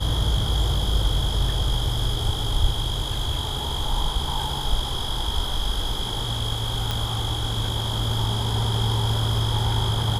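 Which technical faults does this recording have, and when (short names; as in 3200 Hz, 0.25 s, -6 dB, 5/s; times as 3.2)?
6.91 pop -11 dBFS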